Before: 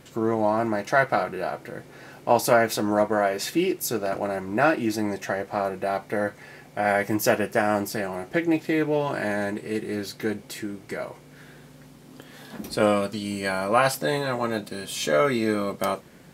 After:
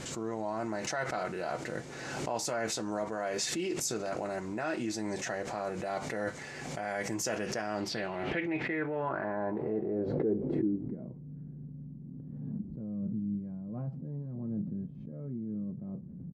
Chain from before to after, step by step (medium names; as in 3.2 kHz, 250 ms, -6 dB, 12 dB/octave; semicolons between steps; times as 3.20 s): resampled via 32 kHz; reverse; compression 6:1, threshold -33 dBFS, peak gain reduction 18.5 dB; reverse; low-pass sweep 7.1 kHz -> 180 Hz, 7.33–11.23 s; swell ahead of each attack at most 29 dB/s